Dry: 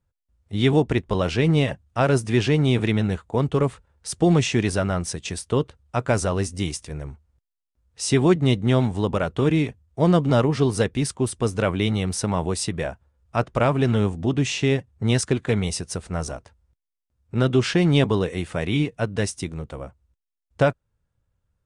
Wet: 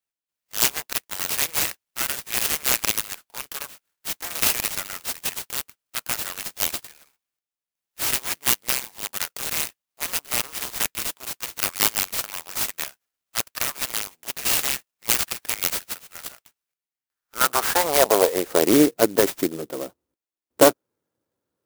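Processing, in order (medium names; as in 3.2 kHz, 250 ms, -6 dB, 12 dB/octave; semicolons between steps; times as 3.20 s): Chebyshev shaper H 6 -9 dB, 8 -20 dB, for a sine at -6 dBFS; high-pass sweep 2.9 kHz -> 320 Hz, 16.61–18.75 s; sampling jitter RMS 0.097 ms; trim +1.5 dB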